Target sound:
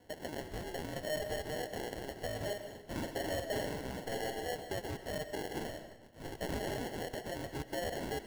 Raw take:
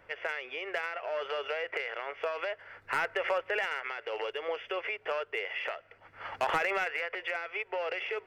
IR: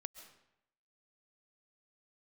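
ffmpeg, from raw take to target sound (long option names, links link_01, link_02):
-filter_complex "[0:a]alimiter=level_in=2dB:limit=-24dB:level=0:latency=1:release=37,volume=-2dB,acrusher=samples=36:mix=1:aa=0.000001,asettb=1/sr,asplit=3[link_01][link_02][link_03];[link_01]atrim=end=2.364[link_04];[link_02]atrim=start=2.36:end=4.49,asetpts=PTS-STARTPTS,afade=type=in:duration=0.004:curve=qsin,afade=type=out:start_time=2.126:duration=0.004:curve=qsin,asplit=2[link_05][link_06];[link_06]adelay=46,volume=-5dB[link_07];[link_05][link_07]amix=inputs=2:normalize=0,atrim=end_sample=93933[link_08];[link_03]atrim=start=4.486[link_09];[link_04][link_08]acrossfade=duration=0.004:curve1=hsin:curve2=qsin[link_10];[link_10][link_09]acrossfade=duration=0.004:curve1=qsin:curve2=hsin[link_11];[1:a]atrim=start_sample=2205[link_12];[link_11][link_12]afir=irnorm=-1:irlink=0,volume=1.5dB"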